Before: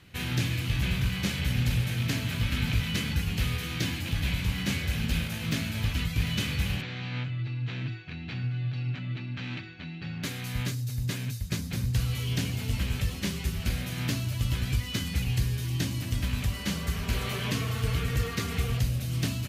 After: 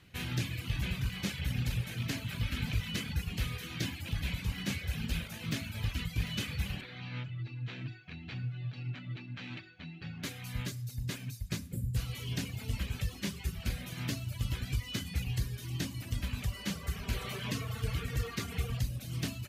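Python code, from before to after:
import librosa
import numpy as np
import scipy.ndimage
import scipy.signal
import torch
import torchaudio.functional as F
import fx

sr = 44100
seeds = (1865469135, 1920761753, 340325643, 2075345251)

y = fx.spec_box(x, sr, start_s=11.64, length_s=0.32, low_hz=570.0, high_hz=6900.0, gain_db=-12)
y = fx.dereverb_blind(y, sr, rt60_s=0.93)
y = fx.rev_schroeder(y, sr, rt60_s=0.67, comb_ms=26, drr_db=17.5)
y = F.gain(torch.from_numpy(y), -4.5).numpy()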